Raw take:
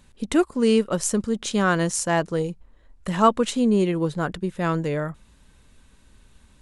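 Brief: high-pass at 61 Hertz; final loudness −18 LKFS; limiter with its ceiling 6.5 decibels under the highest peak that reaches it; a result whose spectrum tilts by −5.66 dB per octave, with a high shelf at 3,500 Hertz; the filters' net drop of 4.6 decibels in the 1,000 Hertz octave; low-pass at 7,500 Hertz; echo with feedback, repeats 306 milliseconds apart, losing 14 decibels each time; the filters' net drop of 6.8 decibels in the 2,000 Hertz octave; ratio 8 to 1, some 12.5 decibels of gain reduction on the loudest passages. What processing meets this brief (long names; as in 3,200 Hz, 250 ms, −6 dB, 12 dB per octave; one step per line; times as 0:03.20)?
high-pass filter 61 Hz
low-pass filter 7,500 Hz
parametric band 1,000 Hz −3.5 dB
parametric band 2,000 Hz −6.5 dB
high-shelf EQ 3,500 Hz −6 dB
downward compressor 8 to 1, threshold −28 dBFS
brickwall limiter −26.5 dBFS
repeating echo 306 ms, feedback 20%, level −14 dB
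level +17.5 dB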